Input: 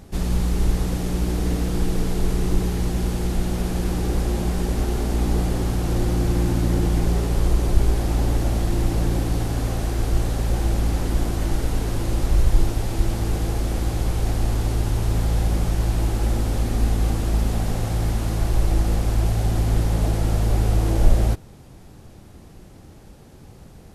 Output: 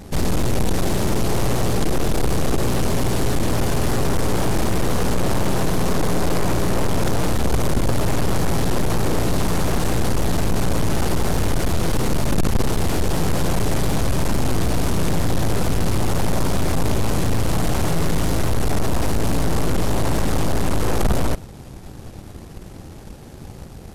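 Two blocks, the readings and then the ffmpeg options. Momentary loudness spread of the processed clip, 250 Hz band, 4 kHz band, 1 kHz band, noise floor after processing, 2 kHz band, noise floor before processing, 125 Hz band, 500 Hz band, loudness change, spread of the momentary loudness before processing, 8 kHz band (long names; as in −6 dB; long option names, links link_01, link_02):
4 LU, +3.5 dB, +6.5 dB, +7.0 dB, −38 dBFS, +7.5 dB, −45 dBFS, 0.0 dB, +6.0 dB, +1.0 dB, 4 LU, +6.5 dB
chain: -filter_complex "[0:a]asplit=2[link_01][link_02];[link_02]alimiter=limit=-13.5dB:level=0:latency=1,volume=1.5dB[link_03];[link_01][link_03]amix=inputs=2:normalize=0,aeval=exprs='1*(cos(1*acos(clip(val(0)/1,-1,1)))-cos(1*PI/2))+0.398*(cos(8*acos(clip(val(0)/1,-1,1)))-cos(8*PI/2))':channel_layout=same,asoftclip=type=tanh:threshold=-13dB"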